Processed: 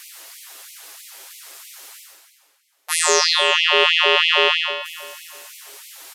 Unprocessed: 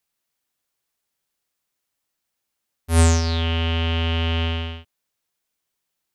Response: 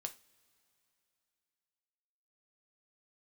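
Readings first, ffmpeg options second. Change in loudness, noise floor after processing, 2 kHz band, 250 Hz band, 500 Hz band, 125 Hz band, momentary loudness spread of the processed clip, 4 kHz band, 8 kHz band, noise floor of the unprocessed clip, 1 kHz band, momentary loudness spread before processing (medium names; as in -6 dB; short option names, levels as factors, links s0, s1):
+6.0 dB, -64 dBFS, +13.5 dB, under -10 dB, +7.5 dB, under -40 dB, 17 LU, +11.5 dB, +9.0 dB, -80 dBFS, +8.5 dB, 11 LU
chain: -filter_complex "[0:a]lowshelf=f=160:t=q:w=1.5:g=6.5,aecho=1:1:7.4:0.47,areverse,acompressor=mode=upward:threshold=0.0282:ratio=2.5,areverse,asplit=2[s0][s1];[s1]adelay=409,lowpass=f=3500:p=1,volume=0.178,asplit=2[s2][s3];[s3]adelay=409,lowpass=f=3500:p=1,volume=0.35,asplit=2[s4][s5];[s5]adelay=409,lowpass=f=3500:p=1,volume=0.35[s6];[s0][s2][s4][s6]amix=inputs=4:normalize=0,aresample=32000,aresample=44100,alimiter=level_in=3.98:limit=0.891:release=50:level=0:latency=1,afftfilt=real='re*gte(b*sr/1024,260*pow(2000/260,0.5+0.5*sin(2*PI*3.1*pts/sr)))':imag='im*gte(b*sr/1024,260*pow(2000/260,0.5+0.5*sin(2*PI*3.1*pts/sr)))':win_size=1024:overlap=0.75,volume=1.19"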